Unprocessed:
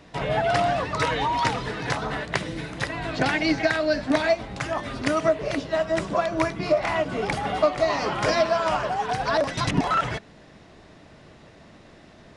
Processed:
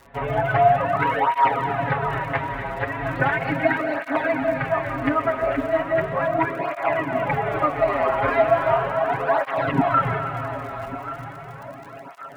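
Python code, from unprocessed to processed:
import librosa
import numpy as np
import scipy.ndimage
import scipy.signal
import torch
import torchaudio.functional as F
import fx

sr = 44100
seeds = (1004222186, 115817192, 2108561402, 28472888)

y = scipy.signal.sosfilt(scipy.signal.bessel(6, 1600.0, 'lowpass', norm='mag', fs=sr, output='sos'), x)
y = fx.peak_eq(y, sr, hz=220.0, db=-7.5, octaves=2.9)
y = y + 0.97 * np.pad(y, (int(7.3 * sr / 1000.0), 0))[:len(y)]
y = fx.dmg_crackle(y, sr, seeds[0], per_s=44.0, level_db=-37.0)
y = fx.echo_feedback(y, sr, ms=1137, feedback_pct=46, wet_db=-13)
y = fx.rev_freeverb(y, sr, rt60_s=3.6, hf_ratio=0.95, predelay_ms=115, drr_db=5.5)
y = fx.flanger_cancel(y, sr, hz=0.37, depth_ms=7.0)
y = y * librosa.db_to_amplitude(6.0)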